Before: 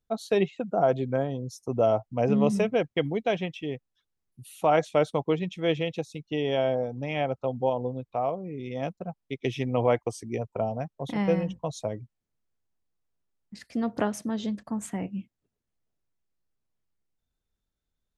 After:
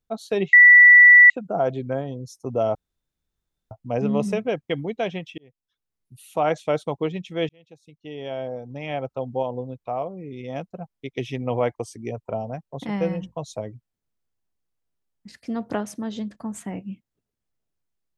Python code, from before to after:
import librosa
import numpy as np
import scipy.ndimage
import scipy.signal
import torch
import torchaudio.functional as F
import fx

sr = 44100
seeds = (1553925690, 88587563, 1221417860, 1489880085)

y = fx.edit(x, sr, fx.insert_tone(at_s=0.53, length_s=0.77, hz=1960.0, db=-6.5),
    fx.insert_room_tone(at_s=1.98, length_s=0.96),
    fx.fade_in_span(start_s=3.65, length_s=0.99, curve='qsin'),
    fx.fade_in_span(start_s=5.76, length_s=1.62), tone=tone)